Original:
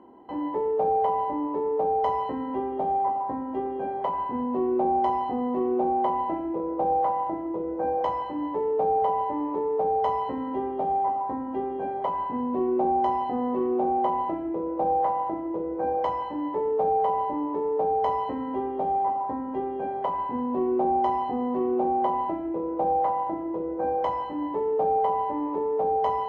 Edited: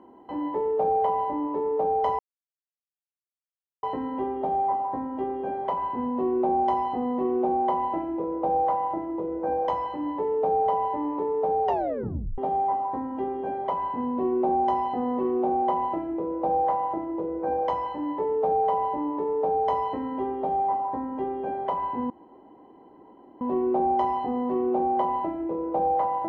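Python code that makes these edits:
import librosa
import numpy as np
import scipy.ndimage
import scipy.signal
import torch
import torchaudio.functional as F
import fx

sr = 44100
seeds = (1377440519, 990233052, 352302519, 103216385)

y = fx.edit(x, sr, fx.insert_silence(at_s=2.19, length_s=1.64),
    fx.tape_stop(start_s=10.01, length_s=0.73),
    fx.insert_room_tone(at_s=20.46, length_s=1.31), tone=tone)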